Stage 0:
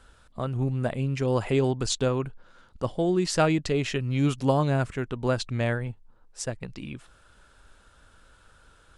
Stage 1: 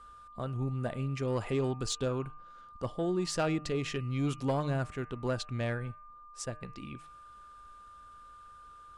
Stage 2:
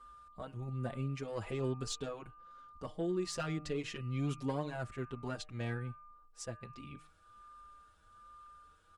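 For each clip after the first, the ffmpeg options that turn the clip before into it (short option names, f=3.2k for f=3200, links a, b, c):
-af "asoftclip=type=tanh:threshold=-15.5dB,bandreject=f=152.8:t=h:w=4,bandreject=f=305.6:t=h:w=4,bandreject=f=458.4:t=h:w=4,bandreject=f=611.2:t=h:w=4,bandreject=f=764:t=h:w=4,bandreject=f=916.8:t=h:w=4,bandreject=f=1.0696k:t=h:w=4,bandreject=f=1.2224k:t=h:w=4,bandreject=f=1.3752k:t=h:w=4,bandreject=f=1.528k:t=h:w=4,bandreject=f=1.6808k:t=h:w=4,bandreject=f=1.8336k:t=h:w=4,bandreject=f=1.9864k:t=h:w=4,bandreject=f=2.1392k:t=h:w=4,bandreject=f=2.292k:t=h:w=4,bandreject=f=2.4448k:t=h:w=4,bandreject=f=2.5976k:t=h:w=4,bandreject=f=2.7504k:t=h:w=4,bandreject=f=2.9032k:t=h:w=4,aeval=exprs='val(0)+0.00631*sin(2*PI*1200*n/s)':c=same,volume=-6dB"
-filter_complex "[0:a]asplit=2[a][b];[b]adelay=5.4,afreqshift=1.2[c];[a][c]amix=inputs=2:normalize=1,volume=-2.5dB"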